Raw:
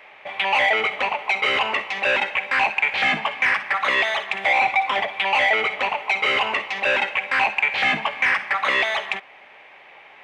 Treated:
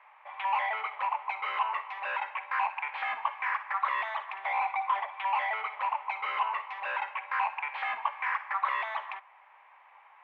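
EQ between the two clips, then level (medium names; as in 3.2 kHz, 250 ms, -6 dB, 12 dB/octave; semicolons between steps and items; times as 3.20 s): ladder band-pass 1.1 kHz, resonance 65%; 0.0 dB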